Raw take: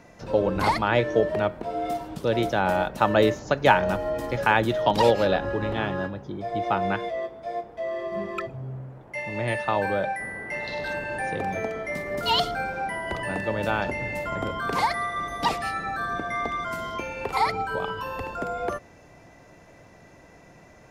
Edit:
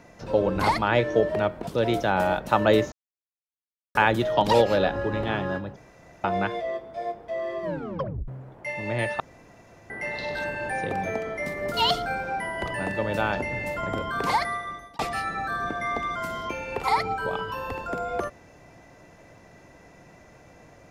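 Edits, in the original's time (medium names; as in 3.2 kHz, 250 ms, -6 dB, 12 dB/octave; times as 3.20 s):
1.67–2.16 s: delete
3.41–4.44 s: mute
6.25–6.73 s: room tone
8.12 s: tape stop 0.65 s
9.69–10.39 s: room tone
14.93–15.48 s: fade out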